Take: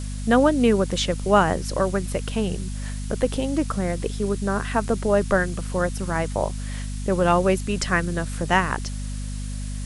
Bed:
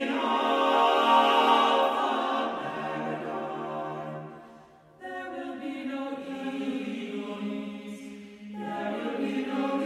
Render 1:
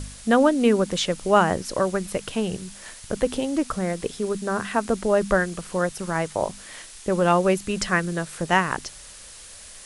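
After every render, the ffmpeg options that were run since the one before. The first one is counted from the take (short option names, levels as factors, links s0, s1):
-af "bandreject=f=50:t=h:w=4,bandreject=f=100:t=h:w=4,bandreject=f=150:t=h:w=4,bandreject=f=200:t=h:w=4,bandreject=f=250:t=h:w=4"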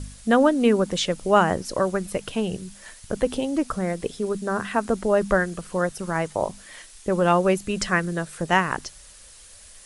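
-af "afftdn=nr=6:nf=-43"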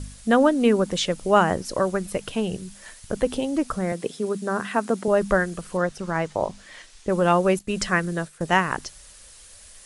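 -filter_complex "[0:a]asettb=1/sr,asplit=3[s0][s1][s2];[s0]atrim=end=3.924[s3];[s1]atrim=start=3.92:end=5.08,asetpts=PTS-STARTPTS,afade=t=in:d=0.004:c=qsin,afade=t=out:st=1.156:d=0.004:c=qsin,highpass=f=130:w=0.5412,highpass=f=130:w=1.3066[s4];[s2]atrim=start=5.076[s5];[s3][s4]acrossfade=d=0.004:c1=hsin:c2=qsin[s6];[s6][s5]acrossfade=d=0.004:c1=qsin:c2=hsin,asettb=1/sr,asplit=3[s7][s8][s9];[s7]atrim=end=5.774[s10];[s8]atrim=start=5.77:end=7.09,asetpts=PTS-STARTPTS,afade=t=in:d=0.004:c=qsin,afade=t=out:st=1.316:d=0.004:c=qsin,lowpass=6400[s11];[s9]atrim=start=7.086[s12];[s10][s11]acrossfade=d=0.004:c1=hsin:c2=qsin[s13];[s13][s12]acrossfade=d=0.004:c1=qsin:c2=hsin,asettb=1/sr,asplit=3[s14][s15][s16];[s14]atrim=end=7.594[s17];[s15]atrim=start=7.59:end=8.41,asetpts=PTS-STARTPTS,afade=t=in:d=0.004:c=qsin,afade=t=out:st=0.816:d=0.004:c=qsin,agate=range=0.0224:threshold=0.02:ratio=3:release=100:detection=peak[s18];[s16]atrim=start=8.406[s19];[s17][s18]acrossfade=d=0.004:c1=hsin:c2=qsin[s20];[s20][s19]acrossfade=d=0.004:c1=qsin:c2=hsin"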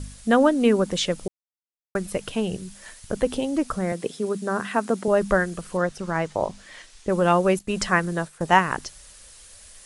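-filter_complex "[0:a]asettb=1/sr,asplit=3[s0][s1][s2];[s0]atrim=end=7.664[s3];[s1]atrim=start=7.66:end=8.59,asetpts=PTS-STARTPTS,afade=t=in:d=0.004:c=qsin,afade=t=out:st=0.926:d=0.004:c=qsin,equalizer=f=900:t=o:w=0.77:g=5.5[s4];[s2]atrim=start=8.586[s5];[s3][s4]acrossfade=d=0.004:c1=hsin:c2=qsin[s6];[s6][s5]acrossfade=d=0.004:c1=qsin:c2=hsin,asplit=3[s7][s8][s9];[s7]atrim=end=1.28,asetpts=PTS-STARTPTS,afade=t=out:st=1.276:d=0.004:c=hsin[s10];[s8]atrim=start=1.28:end=1.95,asetpts=PTS-STARTPTS,volume=0[s11];[s9]atrim=start=1.95,asetpts=PTS-STARTPTS,afade=t=in:d=0.004:c=hsin[s12];[s10][s11][s12]concat=n=3:v=0:a=1"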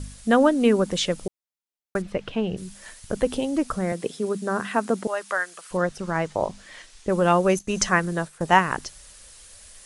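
-filter_complex "[0:a]asplit=3[s0][s1][s2];[s0]afade=t=out:st=2.01:d=0.02[s3];[s1]lowpass=3200,afade=t=in:st=2.01:d=0.02,afade=t=out:st=2.56:d=0.02[s4];[s2]afade=t=in:st=2.56:d=0.02[s5];[s3][s4][s5]amix=inputs=3:normalize=0,asettb=1/sr,asplit=3[s6][s7][s8];[s6]atrim=end=5.074[s9];[s7]atrim=start=5.07:end=5.71,asetpts=PTS-STARTPTS,afade=t=in:d=0.004:c=qsin,afade=t=out:st=0.636:d=0.004:c=qsin,highpass=950[s10];[s8]atrim=start=5.706[s11];[s9][s10]acrossfade=d=0.004:c1=hsin:c2=qsin[s12];[s12][s11]acrossfade=d=0.004:c1=qsin:c2=hsin,asettb=1/sr,asplit=3[s13][s14][s15];[s13]atrim=end=7.494[s16];[s14]atrim=start=7.49:end=7.89,asetpts=PTS-STARTPTS,afade=t=in:d=0.004:c=qsin,afade=t=out:st=0.396:d=0.004:c=qsin,equalizer=f=6200:t=o:w=0.22:g=13[s17];[s15]atrim=start=7.886[s18];[s16][s17]acrossfade=d=0.004:c1=hsin:c2=qsin[s19];[s19][s18]acrossfade=d=0.004:c1=qsin:c2=hsin"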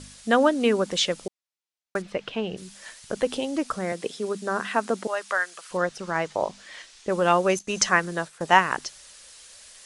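-af "lowpass=4900,aemphasis=mode=production:type=bsi"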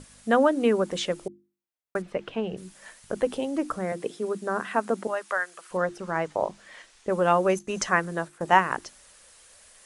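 -af "equalizer=f=4600:w=0.61:g=-9.5,bandreject=f=50:t=h:w=6,bandreject=f=100:t=h:w=6,bandreject=f=150:t=h:w=6,bandreject=f=200:t=h:w=6,bandreject=f=250:t=h:w=6,bandreject=f=300:t=h:w=6,bandreject=f=350:t=h:w=6"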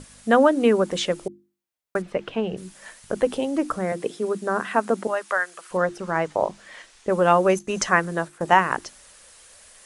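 -af "volume=1.58,alimiter=limit=0.708:level=0:latency=1"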